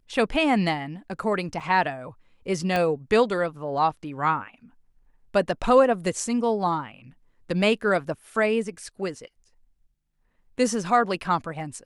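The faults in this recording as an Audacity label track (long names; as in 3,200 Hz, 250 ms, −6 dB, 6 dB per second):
1.600000	1.610000	drop-out 5.5 ms
2.760000	2.760000	click −12 dBFS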